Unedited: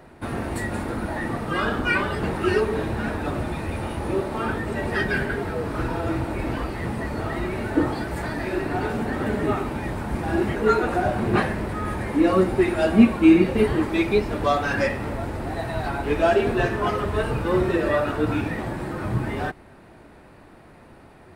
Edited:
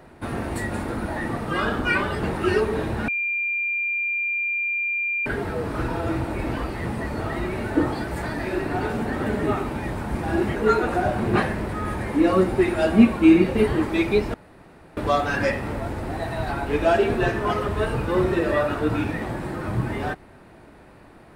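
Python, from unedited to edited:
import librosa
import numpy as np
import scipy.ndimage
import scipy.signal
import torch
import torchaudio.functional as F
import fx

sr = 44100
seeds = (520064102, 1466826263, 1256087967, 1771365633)

y = fx.edit(x, sr, fx.bleep(start_s=3.08, length_s=2.18, hz=2390.0, db=-22.0),
    fx.insert_room_tone(at_s=14.34, length_s=0.63), tone=tone)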